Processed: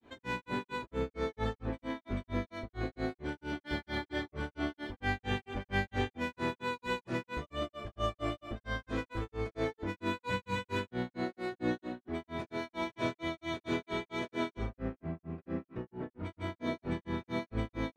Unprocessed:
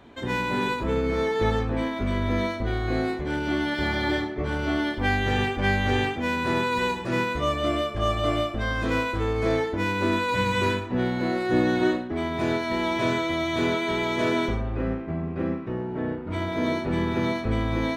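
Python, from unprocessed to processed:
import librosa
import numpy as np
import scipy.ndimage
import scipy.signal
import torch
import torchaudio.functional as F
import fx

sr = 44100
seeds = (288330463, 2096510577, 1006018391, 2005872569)

y = fx.granulator(x, sr, seeds[0], grain_ms=195.0, per_s=4.4, spray_ms=100.0, spread_st=0)
y = y * librosa.db_to_amplitude(-7.0)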